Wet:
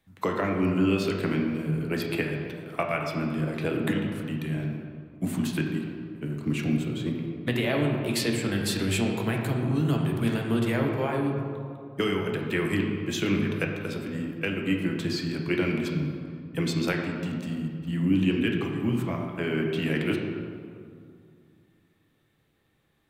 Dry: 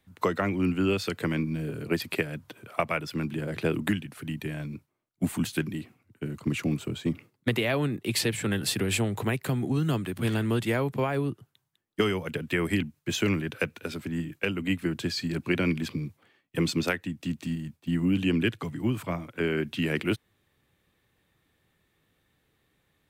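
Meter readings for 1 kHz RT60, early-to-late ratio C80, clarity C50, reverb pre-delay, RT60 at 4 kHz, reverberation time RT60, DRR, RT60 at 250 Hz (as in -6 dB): 2.4 s, 4.5 dB, 3.0 dB, 6 ms, 1.2 s, 2.4 s, 0.5 dB, 2.8 s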